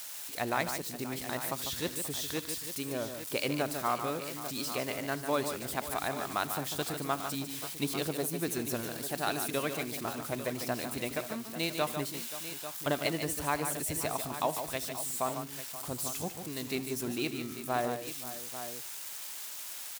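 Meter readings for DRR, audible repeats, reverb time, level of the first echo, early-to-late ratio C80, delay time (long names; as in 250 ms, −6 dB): no reverb audible, 4, no reverb audible, −19.5 dB, no reverb audible, 79 ms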